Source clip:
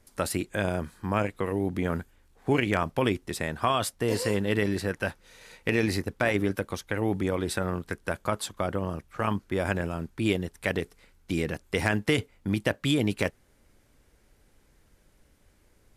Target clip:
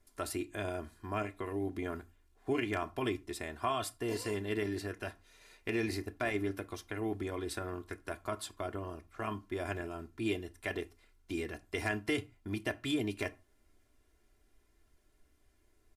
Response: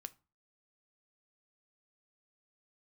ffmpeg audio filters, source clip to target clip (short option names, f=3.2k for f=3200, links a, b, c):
-filter_complex "[0:a]aecho=1:1:2.9:0.75[a];[1:a]atrim=start_sample=2205,afade=t=out:st=0.21:d=0.01,atrim=end_sample=9702[b];[a][b]afir=irnorm=-1:irlink=0,volume=-5.5dB"